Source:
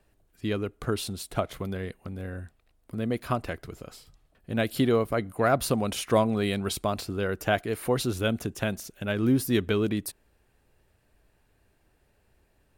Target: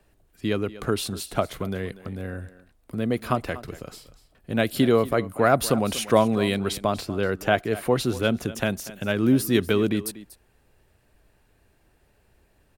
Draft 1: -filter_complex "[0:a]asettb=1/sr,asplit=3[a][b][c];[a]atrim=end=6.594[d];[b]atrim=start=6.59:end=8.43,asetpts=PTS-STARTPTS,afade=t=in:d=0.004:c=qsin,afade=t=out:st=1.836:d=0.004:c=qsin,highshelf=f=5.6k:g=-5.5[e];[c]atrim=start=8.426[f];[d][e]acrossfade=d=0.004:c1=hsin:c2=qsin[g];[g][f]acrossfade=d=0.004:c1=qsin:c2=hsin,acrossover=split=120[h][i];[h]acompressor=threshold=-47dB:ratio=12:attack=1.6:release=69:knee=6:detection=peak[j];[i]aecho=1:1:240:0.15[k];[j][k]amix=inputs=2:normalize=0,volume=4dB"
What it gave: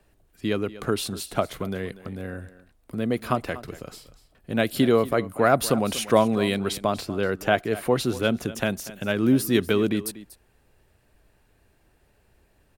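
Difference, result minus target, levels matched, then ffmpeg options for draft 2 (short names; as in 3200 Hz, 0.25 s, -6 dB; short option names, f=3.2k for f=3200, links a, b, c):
compressor: peak gain reduction +6.5 dB
-filter_complex "[0:a]asettb=1/sr,asplit=3[a][b][c];[a]atrim=end=6.594[d];[b]atrim=start=6.59:end=8.43,asetpts=PTS-STARTPTS,afade=t=in:d=0.004:c=qsin,afade=t=out:st=1.836:d=0.004:c=qsin,highshelf=f=5.6k:g=-5.5[e];[c]atrim=start=8.426[f];[d][e]acrossfade=d=0.004:c1=hsin:c2=qsin[g];[g][f]acrossfade=d=0.004:c1=qsin:c2=hsin,acrossover=split=120[h][i];[h]acompressor=threshold=-40dB:ratio=12:attack=1.6:release=69:knee=6:detection=peak[j];[i]aecho=1:1:240:0.15[k];[j][k]amix=inputs=2:normalize=0,volume=4dB"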